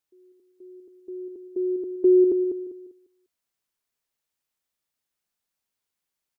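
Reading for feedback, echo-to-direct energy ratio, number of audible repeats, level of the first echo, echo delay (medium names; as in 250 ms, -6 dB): no regular repeats, -7.0 dB, 5, -7.5 dB, 198 ms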